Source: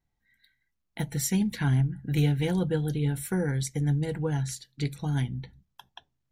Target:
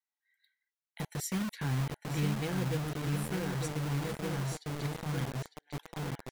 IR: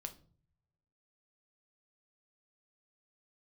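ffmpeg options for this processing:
-filter_complex "[0:a]asplit=2[a][b];[b]adelay=902,lowpass=f=2.9k:p=1,volume=-4.5dB,asplit=2[c][d];[d]adelay=902,lowpass=f=2.9k:p=1,volume=0.49,asplit=2[e][f];[f]adelay=902,lowpass=f=2.9k:p=1,volume=0.49,asplit=2[g][h];[h]adelay=902,lowpass=f=2.9k:p=1,volume=0.49,asplit=2[i][j];[j]adelay=902,lowpass=f=2.9k:p=1,volume=0.49,asplit=2[k][l];[l]adelay=902,lowpass=f=2.9k:p=1,volume=0.49[m];[a][c][e][g][i][k][m]amix=inputs=7:normalize=0,acrossover=split=800|1000[n][o][p];[n]acrusher=bits=4:mix=0:aa=0.000001[q];[q][o][p]amix=inputs=3:normalize=0,volume=-8.5dB"

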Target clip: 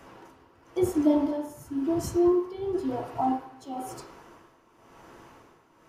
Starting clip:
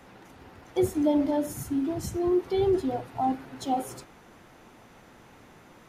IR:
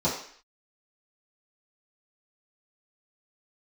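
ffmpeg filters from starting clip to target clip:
-filter_complex "[0:a]tremolo=f=0.97:d=0.77,asplit=2[a][b];[b]highpass=f=340:w=0.5412,highpass=f=340:w=1.3066,equalizer=f=580:t=q:w=4:g=-4,equalizer=f=1.1k:t=q:w=4:g=9,equalizer=f=1.7k:t=q:w=4:g=4,equalizer=f=3.1k:t=q:w=4:g=6,equalizer=f=6.3k:t=q:w=4:g=-7,lowpass=f=7.8k:w=0.5412,lowpass=f=7.8k:w=1.3066[c];[1:a]atrim=start_sample=2205,lowshelf=f=150:g=10[d];[c][d]afir=irnorm=-1:irlink=0,volume=-14dB[e];[a][e]amix=inputs=2:normalize=0"

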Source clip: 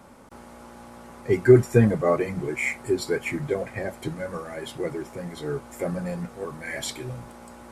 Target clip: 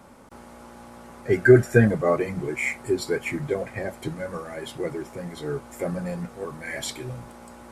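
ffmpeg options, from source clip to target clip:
-filter_complex "[0:a]asettb=1/sr,asplit=3[a][b][c];[a]atrim=end=1.264[d];[b]atrim=start=1.26:end=1.88,asetpts=PTS-STARTPTS,afade=t=in:d=0.004:c=qsin,afade=t=out:st=0.616:d=0.004:c=qsin,equalizer=f=630:t=o:w=0.33:g=7,equalizer=f=1k:t=o:w=0.33:g=-9,equalizer=f=1.6k:t=o:w=0.33:g=11[e];[c]atrim=start=1.876[f];[d][e]acrossfade=d=0.004:c1=hsin:c2=qsin[g];[g][f]acrossfade=d=0.004:c1=qsin:c2=hsin"

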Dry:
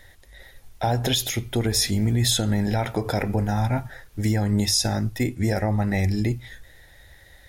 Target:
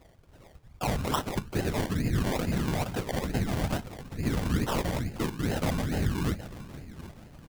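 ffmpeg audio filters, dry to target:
-filter_complex "[0:a]asplit=2[a][b];[b]adelay=770,lowpass=f=2.1k:p=1,volume=-15dB,asplit=2[c][d];[d]adelay=770,lowpass=f=2.1k:p=1,volume=0.41,asplit=2[e][f];[f]adelay=770,lowpass=f=2.1k:p=1,volume=0.41,asplit=2[g][h];[h]adelay=770,lowpass=f=2.1k:p=1,volume=0.41[i];[a][c][e][g][i]amix=inputs=5:normalize=0,afftfilt=real='hypot(re,im)*cos(2*PI*random(0))':imag='hypot(re,im)*sin(2*PI*random(1))':win_size=512:overlap=0.75,acrusher=samples=27:mix=1:aa=0.000001:lfo=1:lforange=16.2:lforate=2.3"

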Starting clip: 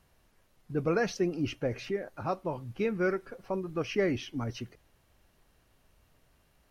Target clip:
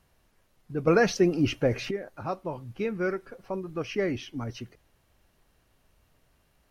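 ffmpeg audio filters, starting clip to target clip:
-filter_complex "[0:a]asettb=1/sr,asplit=3[a][b][c];[a]atrim=end=0.874[d];[b]atrim=start=0.87:end=1.91,asetpts=PTS-STARTPTS,afade=t=in:d=0.004:c=qsin,afade=t=out:st=1.036:d=0.004:c=qsin,acontrast=82[e];[c]atrim=start=1.906[f];[d][e]acrossfade=d=0.004:c1=hsin:c2=qsin[g];[g][f]acrossfade=d=0.004:c1=qsin:c2=hsin"

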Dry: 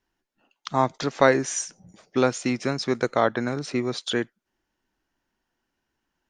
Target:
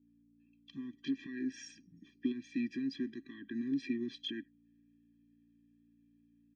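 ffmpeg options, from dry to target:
-filter_complex "[0:a]adynamicequalizer=threshold=0.00891:dfrequency=1900:dqfactor=1.7:tfrequency=1900:tqfactor=1.7:attack=5:release=100:ratio=0.375:range=3.5:mode=boostabove:tftype=bell,acompressor=threshold=-26dB:ratio=16,alimiter=limit=-23dB:level=0:latency=1:release=29,dynaudnorm=f=440:g=3:m=6dB,aeval=exprs='val(0)+0.00282*(sin(2*PI*60*n/s)+sin(2*PI*2*60*n/s)/2+sin(2*PI*3*60*n/s)/3+sin(2*PI*4*60*n/s)/4+sin(2*PI*5*60*n/s)/5)':c=same,asetrate=42336,aresample=44100,asplit=3[a][b][c];[a]bandpass=f=270:t=q:w=8,volume=0dB[d];[b]bandpass=f=2.29k:t=q:w=8,volume=-6dB[e];[c]bandpass=f=3.01k:t=q:w=8,volume=-9dB[f];[d][e][f]amix=inputs=3:normalize=0,afftfilt=real='re*eq(mod(floor(b*sr/1024/390),2),0)':imag='im*eq(mod(floor(b*sr/1024/390),2),0)':win_size=1024:overlap=0.75,volume=1dB"

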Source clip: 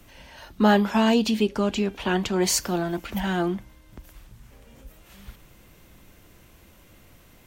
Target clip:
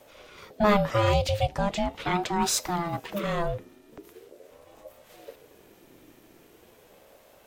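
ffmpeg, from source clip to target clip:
-af "aeval=exprs='val(0)*sin(2*PI*440*n/s+440*0.3/0.41*sin(2*PI*0.41*n/s))':c=same"

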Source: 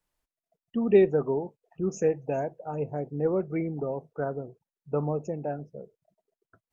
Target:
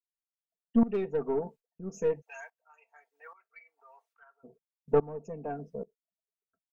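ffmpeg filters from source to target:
-filter_complex "[0:a]agate=range=-25dB:threshold=-50dB:ratio=16:detection=peak,asplit=3[a][b][c];[a]afade=t=out:st=2.2:d=0.02[d];[b]highpass=f=1.3k:w=0.5412,highpass=f=1.3k:w=1.3066,afade=t=in:st=2.2:d=0.02,afade=t=out:st=4.43:d=0.02[e];[c]afade=t=in:st=4.43:d=0.02[f];[d][e][f]amix=inputs=3:normalize=0,aecho=1:1:4.4:0.92,acontrast=66,aeval=exprs='0.668*(cos(1*acos(clip(val(0)/0.668,-1,1)))-cos(1*PI/2))+0.0335*(cos(4*acos(clip(val(0)/0.668,-1,1)))-cos(4*PI/2))+0.0106*(cos(8*acos(clip(val(0)/0.668,-1,1)))-cos(8*PI/2))':c=same,aeval=exprs='val(0)*pow(10,-18*if(lt(mod(-1.2*n/s,1),2*abs(-1.2)/1000),1-mod(-1.2*n/s,1)/(2*abs(-1.2)/1000),(mod(-1.2*n/s,1)-2*abs(-1.2)/1000)/(1-2*abs(-1.2)/1000))/20)':c=same,volume=-5dB"

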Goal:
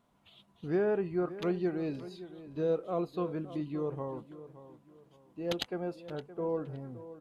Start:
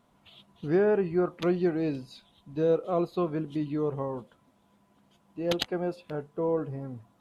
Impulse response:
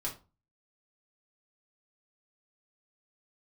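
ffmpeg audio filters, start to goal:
-filter_complex "[0:a]asplit=2[a][b];[b]adelay=569,lowpass=f=2.8k:p=1,volume=-14.5dB,asplit=2[c][d];[d]adelay=569,lowpass=f=2.8k:p=1,volume=0.33,asplit=2[e][f];[f]adelay=569,lowpass=f=2.8k:p=1,volume=0.33[g];[a][c][e][g]amix=inputs=4:normalize=0,volume=-5.5dB"

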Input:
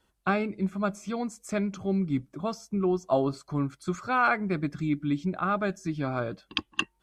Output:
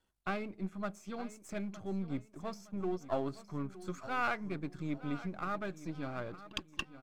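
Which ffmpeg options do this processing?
-filter_complex "[0:a]aeval=exprs='if(lt(val(0),0),0.447*val(0),val(0))':c=same,asplit=2[a][b];[b]aecho=0:1:914|1828|2742:0.168|0.0638|0.0242[c];[a][c]amix=inputs=2:normalize=0,volume=-7.5dB"

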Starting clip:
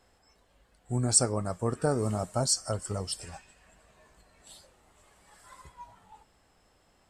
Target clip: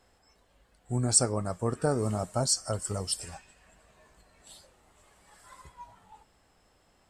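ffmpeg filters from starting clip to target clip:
-filter_complex "[0:a]asettb=1/sr,asplit=3[a][b][c];[a]atrim=end=2.734[d];[b]atrim=start=2.73:end=3.34,asetpts=PTS-STARTPTS,afade=t=in:d=0.004:c=qsin,afade=t=out:st=0.606:d=0.004:c=qsin,highshelf=f=7k:g=8[e];[c]atrim=start=3.336[f];[d][e]acrossfade=d=0.004:c1=hsin:c2=qsin[g];[g][f]acrossfade=d=0.004:c1=qsin:c2=hsin"

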